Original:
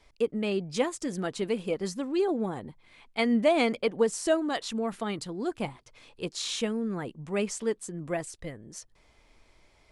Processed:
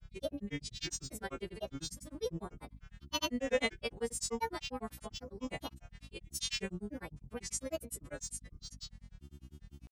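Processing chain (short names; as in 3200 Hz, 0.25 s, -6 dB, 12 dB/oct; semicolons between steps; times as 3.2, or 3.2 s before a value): frequency quantiser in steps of 2 st; hum 50 Hz, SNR 11 dB; grains, grains 10/s, pitch spread up and down by 7 st; gain -7.5 dB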